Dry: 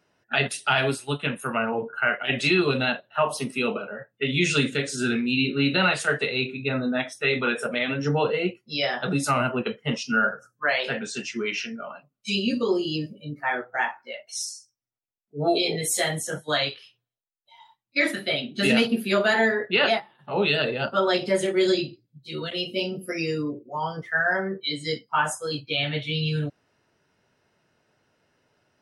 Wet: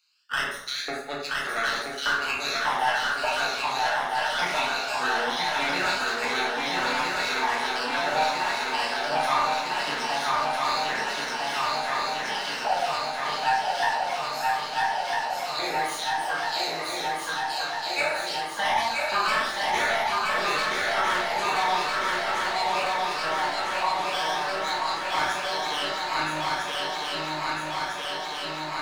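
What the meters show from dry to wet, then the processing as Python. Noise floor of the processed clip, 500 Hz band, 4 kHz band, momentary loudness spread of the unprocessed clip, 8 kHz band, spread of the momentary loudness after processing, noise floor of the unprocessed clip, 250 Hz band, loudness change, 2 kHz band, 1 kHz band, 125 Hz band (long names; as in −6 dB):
−33 dBFS, −5.0 dB, +0.5 dB, 10 LU, −1.5 dB, 5 LU, −78 dBFS, −12.5 dB, −1.0 dB, 0.0 dB, +6.5 dB, −15.0 dB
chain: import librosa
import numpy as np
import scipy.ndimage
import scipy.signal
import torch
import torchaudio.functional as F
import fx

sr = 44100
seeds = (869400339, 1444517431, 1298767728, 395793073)

y = scipy.signal.sosfilt(scipy.signal.butter(4, 140.0, 'highpass', fs=sr, output='sos'), x)
y = fx.bass_treble(y, sr, bass_db=14, treble_db=-13)
y = np.maximum(y, 0.0)
y = fx.filter_lfo_highpass(y, sr, shape='square', hz=1.7, low_hz=820.0, high_hz=4500.0, q=2.7)
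y = 10.0 ** (-19.5 / 20.0) * np.tanh(y / 10.0 ** (-19.5 / 20.0))
y = fx.phaser_stages(y, sr, stages=12, low_hz=330.0, high_hz=1000.0, hz=0.21, feedback_pct=15)
y = fx.echo_swing(y, sr, ms=1301, ratio=3, feedback_pct=70, wet_db=-3)
y = fx.rev_plate(y, sr, seeds[0], rt60_s=0.67, hf_ratio=0.6, predelay_ms=0, drr_db=-3.5)
y = fx.band_squash(y, sr, depth_pct=40)
y = y * librosa.db_to_amplitude(1.5)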